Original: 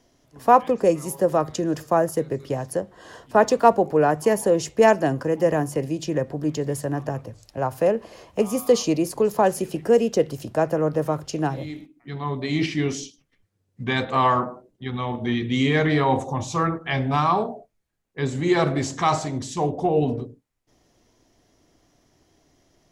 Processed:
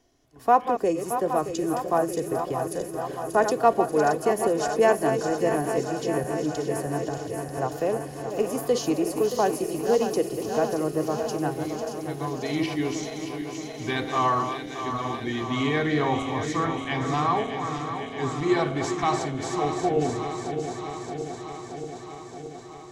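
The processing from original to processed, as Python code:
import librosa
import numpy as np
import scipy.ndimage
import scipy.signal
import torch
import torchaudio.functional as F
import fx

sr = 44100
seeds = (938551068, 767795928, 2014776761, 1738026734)

p1 = fx.reverse_delay_fb(x, sr, ms=312, feedback_pct=84, wet_db=-8.5)
p2 = p1 + 0.36 * np.pad(p1, (int(2.7 * sr / 1000.0), 0))[:len(p1)]
p3 = p2 + fx.echo_wet_highpass(p2, sr, ms=585, feedback_pct=69, hz=4000.0, wet_db=-7, dry=0)
y = F.gain(torch.from_numpy(p3), -5.0).numpy()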